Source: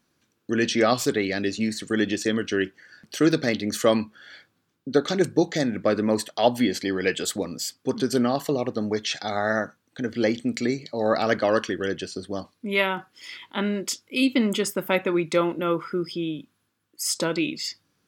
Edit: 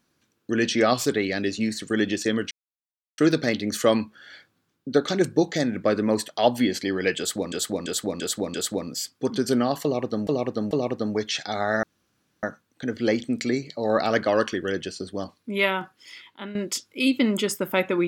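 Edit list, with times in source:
0:02.51–0:03.18: silence
0:07.18–0:07.52: repeat, 5 plays
0:08.47–0:08.91: repeat, 3 plays
0:09.59: splice in room tone 0.60 s
0:12.94–0:13.71: fade out, to −13.5 dB

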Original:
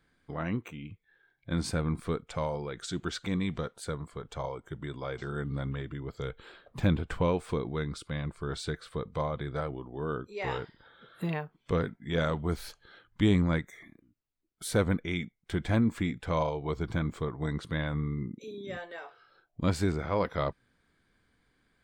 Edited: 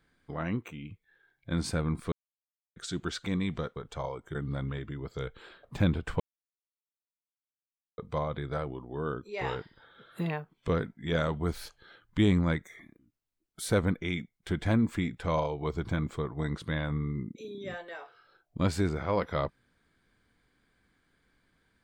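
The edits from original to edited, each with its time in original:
0:02.12–0:02.76: silence
0:03.76–0:04.16: remove
0:04.75–0:05.38: remove
0:07.23–0:09.01: silence

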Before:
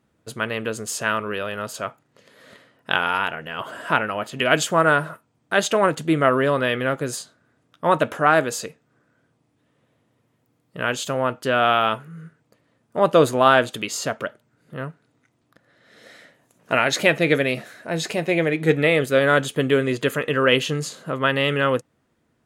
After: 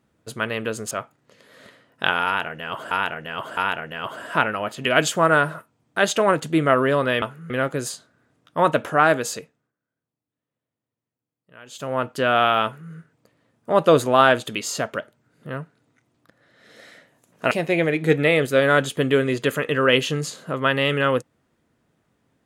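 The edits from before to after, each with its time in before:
0:00.91–0:01.78: remove
0:03.12–0:03.78: repeat, 3 plays
0:08.59–0:11.32: duck −21.5 dB, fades 0.40 s
0:11.91–0:12.19: duplicate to 0:06.77
0:16.78–0:18.10: remove

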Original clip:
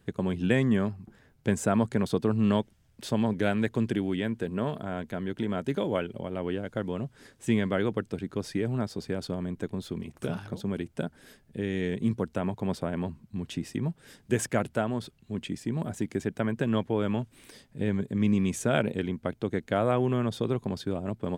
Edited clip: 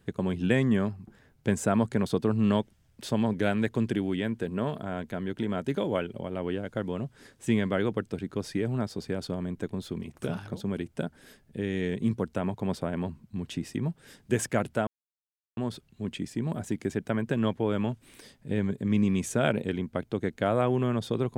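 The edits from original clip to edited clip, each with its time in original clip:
0:14.87: splice in silence 0.70 s

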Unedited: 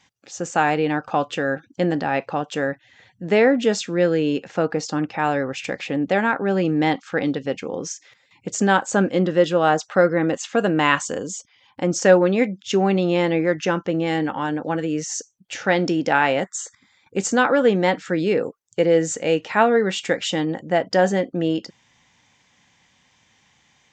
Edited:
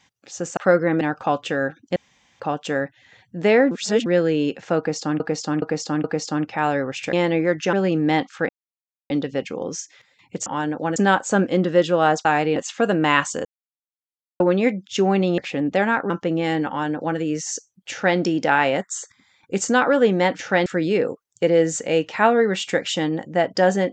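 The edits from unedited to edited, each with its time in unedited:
0:00.57–0:00.88: swap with 0:09.87–0:10.31
0:01.83–0:02.27: fill with room tone
0:03.58–0:03.93: reverse
0:04.65–0:05.07: repeat, 4 plays
0:05.74–0:06.46: swap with 0:13.13–0:13.73
0:07.22: splice in silence 0.61 s
0:11.20–0:12.15: silence
0:14.31–0:14.81: duplicate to 0:08.58
0:15.54–0:15.81: duplicate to 0:18.02

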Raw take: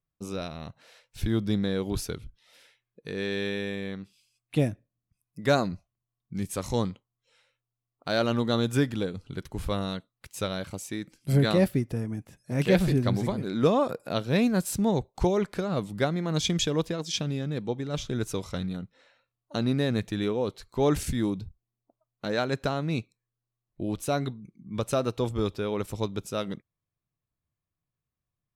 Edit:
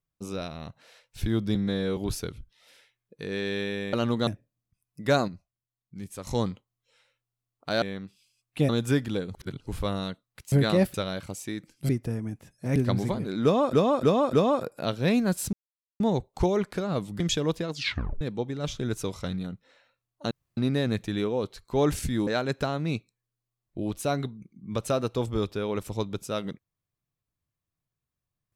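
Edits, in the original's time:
0:01.55–0:01.83: time-stretch 1.5×
0:03.79–0:04.66: swap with 0:08.21–0:08.55
0:05.67–0:06.66: clip gain −7.5 dB
0:09.20–0:09.53: reverse
0:11.33–0:11.75: move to 0:10.38
0:12.62–0:12.94: remove
0:13.61–0:13.91: repeat, 4 plays
0:14.81: splice in silence 0.47 s
0:16.01–0:16.50: remove
0:17.02: tape stop 0.49 s
0:19.61: splice in room tone 0.26 s
0:21.31–0:22.30: remove

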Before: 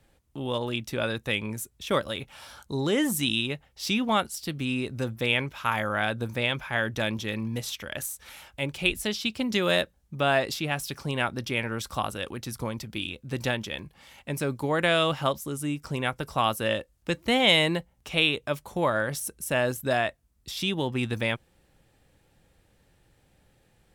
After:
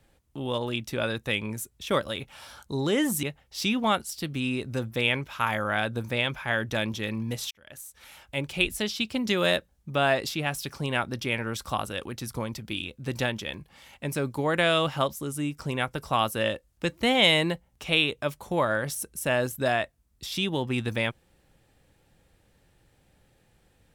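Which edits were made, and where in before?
0:03.23–0:03.48: remove
0:07.76–0:08.63: fade in

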